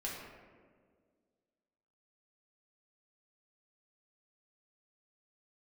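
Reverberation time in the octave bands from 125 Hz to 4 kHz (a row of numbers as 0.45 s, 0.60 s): 1.9 s, 2.3 s, 2.1 s, 1.5 s, 1.3 s, 0.85 s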